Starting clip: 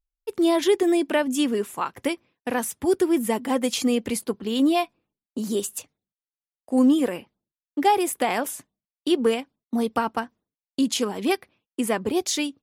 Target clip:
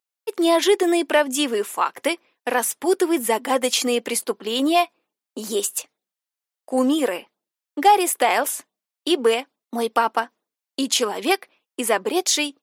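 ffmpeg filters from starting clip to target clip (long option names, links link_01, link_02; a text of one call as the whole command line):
ffmpeg -i in.wav -af "highpass=450,acontrast=72" out.wav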